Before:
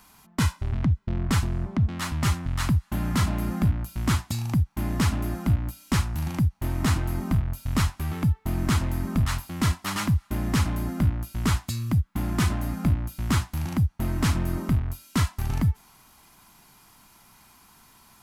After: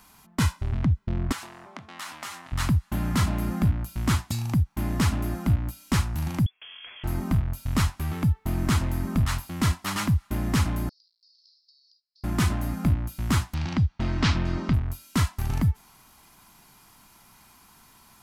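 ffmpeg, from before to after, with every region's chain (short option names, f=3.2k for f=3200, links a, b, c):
-filter_complex "[0:a]asettb=1/sr,asplit=3[a][b][c];[a]atrim=end=1.324[d];[b]atrim=start=1.32:end=2.52,asetpts=PTS-STARTPTS,afade=t=in:d=0.004:c=qsin,afade=t=out:st=1.196:d=0.004:c=qsin,highpass=610,acompressor=threshold=-32dB:ratio=10:attack=3.2:release=140:knee=1:detection=peak,asplit=2[e][f];[f]adelay=22,volume=-10.5dB[g];[e][g]amix=inputs=2:normalize=0,atrim=end_sample=52920[h];[c]atrim=start=2.516[i];[d][h]acrossfade=d=0.004:c1=hsin:c2=qsin[j];[j][i]acrossfade=d=0.004:c1=qsin:c2=hsin,asettb=1/sr,asplit=3[k][l][m];[k]atrim=end=6.464[n];[l]atrim=start=6.46:end=7.04,asetpts=PTS-STARTPTS,afade=t=in:d=0.004:c=qsin,afade=t=out:st=0.576:d=0.004:c=qsin,highpass=260,acompressor=threshold=-40dB:ratio=8:attack=3.2:release=140:knee=1:detection=peak,lowpass=f=3k:t=q:w=0.5098,lowpass=f=3k:t=q:w=0.6013,lowpass=f=3k:t=q:w=0.9,lowpass=f=3k:t=q:w=2.563,afreqshift=-3500[o];[m]atrim=start=7.036[p];[n][o]acrossfade=d=0.004:c1=hsin:c2=qsin[q];[q][p]acrossfade=d=0.004:c1=qsin:c2=hsin,asettb=1/sr,asplit=3[r][s][t];[r]atrim=end=10.894[u];[s]atrim=start=10.89:end=12.24,asetpts=PTS-STARTPTS,afade=t=in:d=0.004:c=qsin,afade=t=out:st=1.346:d=0.004:c=qsin,asuperpass=centerf=4700:order=8:qfactor=3.7,acompressor=threshold=-56dB:ratio=12:attack=3.2:release=140:knee=1:detection=peak[v];[t]atrim=start=12.236[w];[u][v]acrossfade=d=0.004:c1=hsin:c2=qsin[x];[x][w]acrossfade=d=0.004:c1=qsin:c2=hsin,asettb=1/sr,asplit=3[y][z][aa];[y]atrim=end=13.544[ab];[z]atrim=start=13.54:end=14.74,asetpts=PTS-STARTPTS,afade=t=in:d=0.004:c=qsin,afade=t=out:st=1.196:d=0.004:c=qsin,lowpass=f=4.9k:w=0.5412,lowpass=f=4.9k:w=1.3066,highshelf=f=2.3k:g=9[ac];[aa]atrim=start=14.736[ad];[ab][ac]acrossfade=d=0.004:c1=hsin:c2=qsin[ae];[ae][ad]acrossfade=d=0.004:c1=qsin:c2=hsin"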